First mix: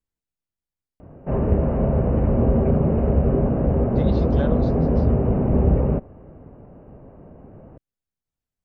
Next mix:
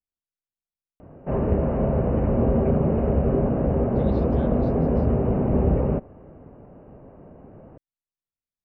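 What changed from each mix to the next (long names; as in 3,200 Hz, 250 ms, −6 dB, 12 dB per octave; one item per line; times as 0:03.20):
speech −9.5 dB
master: add low-shelf EQ 150 Hz −5 dB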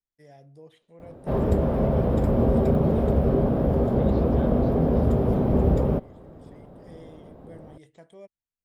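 first voice: unmuted
background: remove linear-phase brick-wall low-pass 3,000 Hz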